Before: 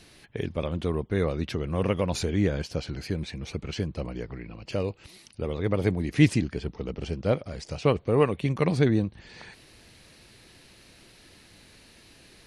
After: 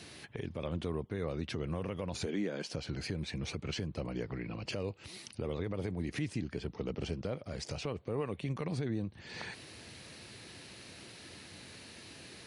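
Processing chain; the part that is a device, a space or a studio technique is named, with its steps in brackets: 2.25–2.74 s: high-pass 190 Hz 24 dB/octave; podcast mastering chain (high-pass 74 Hz 24 dB/octave; de-esser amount 70%; compression 2.5:1, threshold -39 dBFS, peak gain reduction 17 dB; peak limiter -29 dBFS, peak gain reduction 7 dB; trim +3.5 dB; MP3 96 kbps 24 kHz)

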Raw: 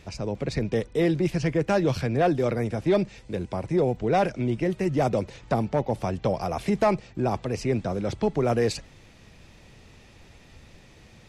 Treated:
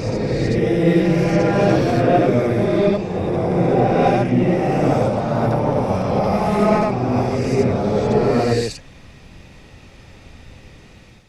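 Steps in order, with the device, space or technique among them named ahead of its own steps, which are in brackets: reverse reverb (reverse; reverberation RT60 2.8 s, pre-delay 53 ms, DRR -8.5 dB; reverse); trim -1 dB

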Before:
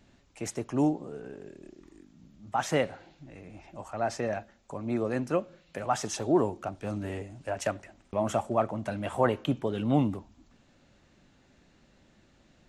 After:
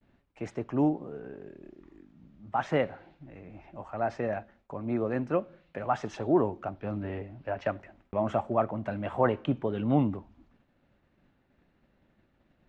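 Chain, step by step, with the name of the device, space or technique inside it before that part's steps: 6.74–7.69 s: low-pass 5.3 kHz 24 dB/octave; hearing-loss simulation (low-pass 2.4 kHz 12 dB/octave; expander -56 dBFS)

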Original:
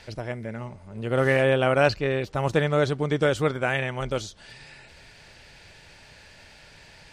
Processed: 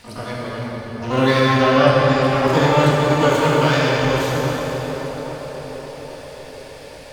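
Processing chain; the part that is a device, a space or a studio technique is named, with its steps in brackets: dynamic bell 160 Hz, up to +3 dB, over -43 dBFS, Q 5; de-hum 216.5 Hz, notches 4; 1.40–2.10 s: distance through air 410 m; shimmer-style reverb (harmony voices +12 st -4 dB; reverberation RT60 3.8 s, pre-delay 19 ms, DRR -5 dB); band-passed feedback delay 823 ms, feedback 60%, band-pass 570 Hz, level -9 dB

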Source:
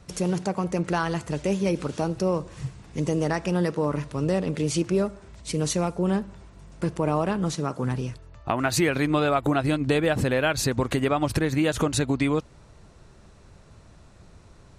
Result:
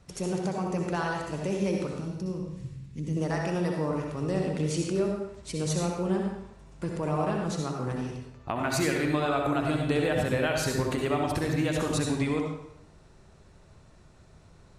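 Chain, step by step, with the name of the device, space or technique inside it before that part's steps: 1.89–3.17 s: FFT filter 240 Hz 0 dB, 710 Hz -19 dB, 2.4 kHz -7 dB; bathroom (reverberation RT60 0.80 s, pre-delay 59 ms, DRR 0.5 dB); trim -6.5 dB

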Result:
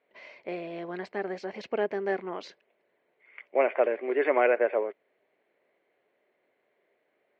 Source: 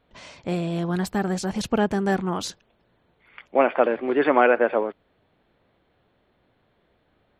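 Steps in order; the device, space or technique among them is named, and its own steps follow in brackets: phone earpiece (cabinet simulation 400–4100 Hz, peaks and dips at 400 Hz +7 dB, 600 Hz +5 dB, 850 Hz -3 dB, 1.3 kHz -5 dB, 2.1 kHz +9 dB, 3.5 kHz -8 dB); trim -7 dB

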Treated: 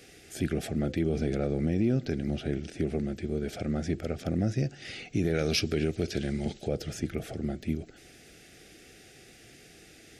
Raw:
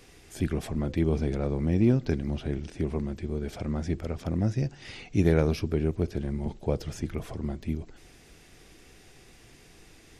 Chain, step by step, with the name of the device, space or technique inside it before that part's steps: PA system with an anti-feedback notch (high-pass 140 Hz 6 dB/octave; Butterworth band-stop 1 kHz, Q 2.1; peak limiter -19.5 dBFS, peak gain reduction 9 dB); 5.34–6.68 s: peaking EQ 4.6 kHz +11 dB 2.7 oct; trim +2.5 dB

